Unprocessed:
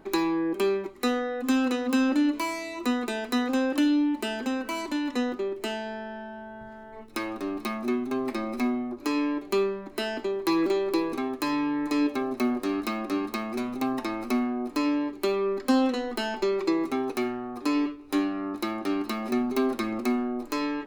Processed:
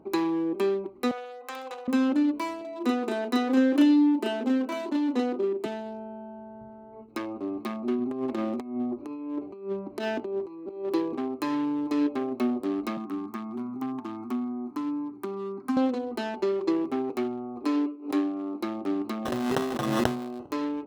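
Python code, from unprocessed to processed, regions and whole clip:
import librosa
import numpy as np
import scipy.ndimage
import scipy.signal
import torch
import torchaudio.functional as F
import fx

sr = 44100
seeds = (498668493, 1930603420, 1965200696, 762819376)

y = fx.chain(x, sr, fx.highpass(hz=620.0, slope=24),
    fx.room_flutter(wall_m=11.2, rt60_s=0.59), at=(1.11, 1.88))
y = fx.chain(y, sr, fx.highpass(hz=170.0, slope=24),
    fx.dynamic_eq(hz=350.0, q=1.1, threshold_db=-35.0, ratio=4.0, max_db=3),
    fx.doubler(ms=35.0, db=-3.0), at=(2.61, 5.66))
y = fx.chain(y, sr, fx.over_compress(threshold_db=-30.0, ratio=-0.5),
    fx.resample_linear(factor=2), at=(7.98, 10.85))
y = fx.chain(y, sr, fx.highpass(hz=96.0, slope=24),
    fx.fixed_phaser(hz=1300.0, stages=4),
    fx.band_squash(depth_pct=40), at=(12.97, 15.77))
y = fx.chain(y, sr, fx.steep_highpass(hz=210.0, slope=48),
    fx.pre_swell(db_per_s=140.0), at=(17.64, 18.61))
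y = fx.chain(y, sr, fx.riaa(side='recording'),
    fx.sample_hold(seeds[0], rate_hz=2300.0, jitter_pct=0),
    fx.pre_swell(db_per_s=26.0), at=(19.25, 20.51))
y = fx.wiener(y, sr, points=25)
y = scipy.signal.sosfilt(scipy.signal.butter(2, 74.0, 'highpass', fs=sr, output='sos'), y)
y = fx.high_shelf(y, sr, hz=5400.0, db=-6.5)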